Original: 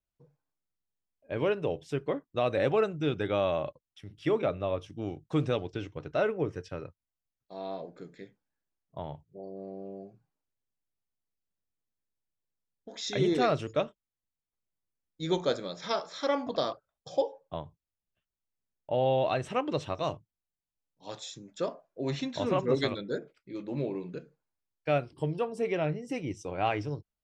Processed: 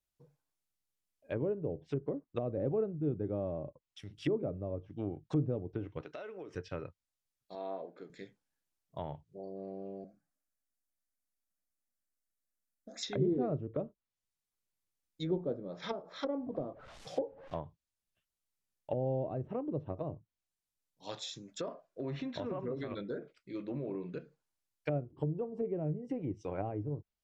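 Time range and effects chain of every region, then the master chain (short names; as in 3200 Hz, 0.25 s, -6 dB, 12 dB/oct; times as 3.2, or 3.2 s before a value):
6.01–6.55 HPF 260 Hz + compressor 8:1, threshold -40 dBFS
7.55–8.1 dynamic EQ 2100 Hz, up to -4 dB, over -56 dBFS, Q 0.94 + BPF 270–3000 Hz
10.04–13.03 fixed phaser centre 620 Hz, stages 8 + shaped vibrato saw up 4.3 Hz, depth 100 cents
16.37–17.59 delta modulation 64 kbps, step -44 dBFS + LPF 3500 Hz 6 dB/oct
21.43–24.15 compressor 12:1, threshold -31 dBFS + notch 850 Hz, Q 9.4
whole clip: treble ducked by the level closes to 390 Hz, closed at -28.5 dBFS; high shelf 3100 Hz +6.5 dB; gain -2 dB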